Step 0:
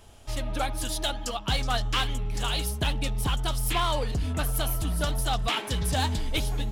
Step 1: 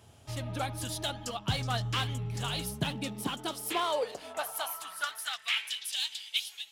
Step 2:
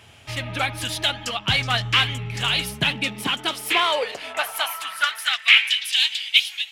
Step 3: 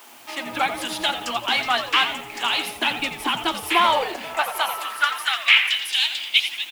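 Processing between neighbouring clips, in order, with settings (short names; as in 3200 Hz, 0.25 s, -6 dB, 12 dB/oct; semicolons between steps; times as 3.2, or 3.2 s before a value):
high-pass sweep 110 Hz -> 3000 Hz, 2.47–5.89; gain -5 dB
bell 2300 Hz +14.5 dB 1.5 oct; gain +4.5 dB
added noise white -47 dBFS; rippled Chebyshev high-pass 230 Hz, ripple 9 dB; on a send: frequency-shifting echo 86 ms, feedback 39%, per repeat -120 Hz, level -10.5 dB; on the sum: gain +6.5 dB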